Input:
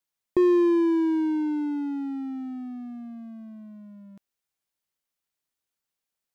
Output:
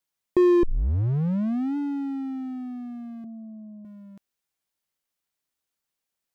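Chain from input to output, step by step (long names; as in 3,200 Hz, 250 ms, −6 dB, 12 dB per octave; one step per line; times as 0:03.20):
0:00.63: tape start 1.14 s
0:03.24–0:03.85: Butterworth low-pass 810 Hz 36 dB per octave
level +1.5 dB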